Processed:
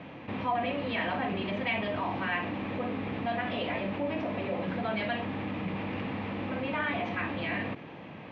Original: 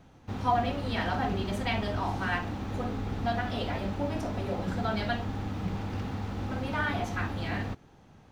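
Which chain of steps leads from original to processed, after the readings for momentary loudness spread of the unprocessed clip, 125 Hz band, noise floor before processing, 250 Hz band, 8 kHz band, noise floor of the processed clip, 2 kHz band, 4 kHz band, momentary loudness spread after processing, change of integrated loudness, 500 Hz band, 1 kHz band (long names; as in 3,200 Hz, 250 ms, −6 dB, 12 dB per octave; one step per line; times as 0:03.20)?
6 LU, −6.0 dB, −56 dBFS, 0.0 dB, below −20 dB, −45 dBFS, +1.5 dB, −0.5 dB, 4 LU, −0.5 dB, +1.0 dB, −1.5 dB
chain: loudspeaker in its box 230–2,900 Hz, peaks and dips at 240 Hz −4 dB, 400 Hz −7 dB, 800 Hz −8 dB, 1,400 Hz −10 dB, 2,400 Hz +4 dB
envelope flattener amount 50%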